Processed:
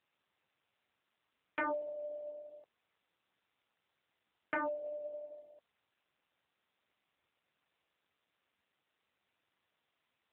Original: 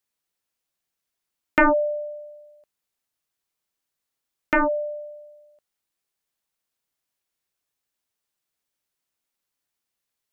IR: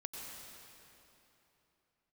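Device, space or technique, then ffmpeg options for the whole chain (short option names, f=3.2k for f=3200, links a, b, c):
voicemail: -af "highpass=320,lowpass=3k,acompressor=threshold=-33dB:ratio=10,volume=1.5dB" -ar 8000 -c:a libopencore_amrnb -b:a 7400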